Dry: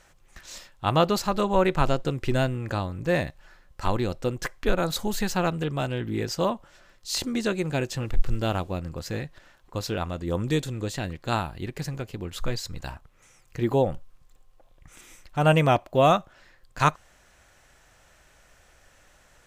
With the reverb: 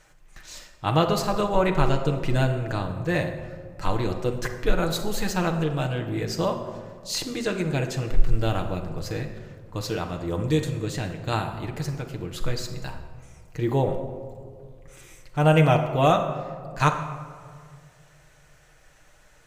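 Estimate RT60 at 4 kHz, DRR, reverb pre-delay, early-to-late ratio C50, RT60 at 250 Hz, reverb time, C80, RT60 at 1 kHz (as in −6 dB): 0.90 s, 2.5 dB, 6 ms, 8.0 dB, 2.1 s, 2.0 s, 9.5 dB, 1.8 s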